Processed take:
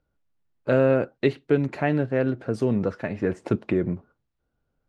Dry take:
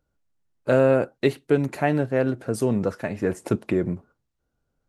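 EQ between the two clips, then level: LPF 4000 Hz 12 dB/oct; dynamic EQ 830 Hz, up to -4 dB, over -31 dBFS, Q 1.2; 0.0 dB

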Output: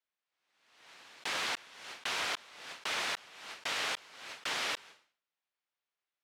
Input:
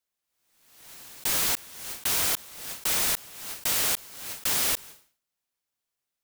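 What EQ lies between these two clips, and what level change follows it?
HPF 750 Hz 6 dB/oct; LPF 3200 Hz 12 dB/oct; 0.0 dB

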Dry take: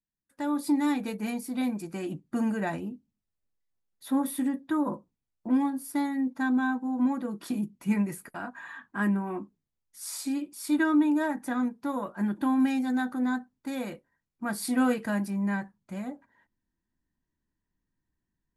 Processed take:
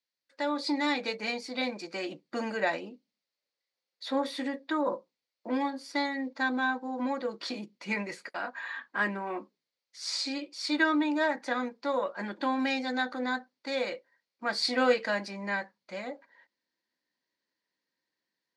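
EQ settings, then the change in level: speaker cabinet 390–5400 Hz, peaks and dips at 530 Hz +10 dB, 2100 Hz +6 dB, 4400 Hz +8 dB; high shelf 2700 Hz +10 dB; 0.0 dB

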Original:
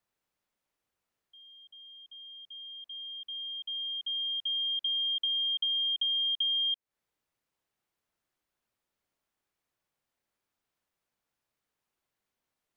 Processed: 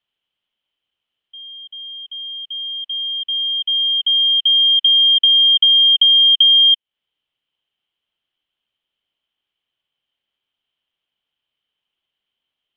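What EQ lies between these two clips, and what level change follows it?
synth low-pass 3100 Hz, resonance Q 15; -1.5 dB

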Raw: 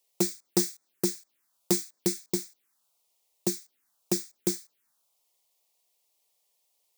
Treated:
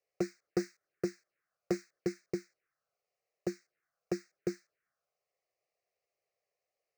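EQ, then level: air absorption 240 m; fixed phaser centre 930 Hz, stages 6; +1.0 dB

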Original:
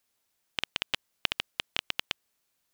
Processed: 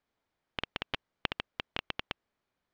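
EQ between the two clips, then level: tape spacing loss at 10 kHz 33 dB; notch 2700 Hz, Q 17; +4.0 dB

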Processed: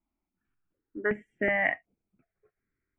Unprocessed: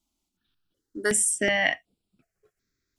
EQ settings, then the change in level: elliptic low-pass 2300 Hz, stop band 50 dB; -2.0 dB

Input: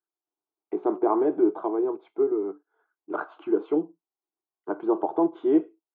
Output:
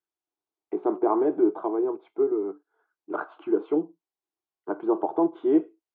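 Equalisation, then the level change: air absorption 59 m; 0.0 dB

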